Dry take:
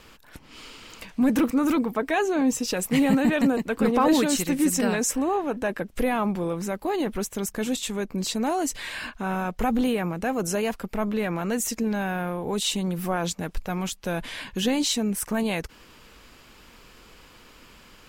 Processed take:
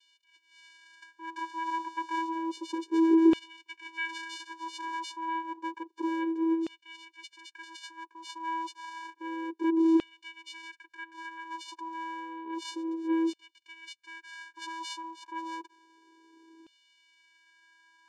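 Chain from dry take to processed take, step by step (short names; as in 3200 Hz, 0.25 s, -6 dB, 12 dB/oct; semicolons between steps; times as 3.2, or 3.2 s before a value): 1.38–2.23 buzz 400 Hz, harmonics 16, -39 dBFS 0 dB/oct; vocoder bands 4, square 327 Hz; LFO high-pass saw down 0.3 Hz 340–3200 Hz; gain -4 dB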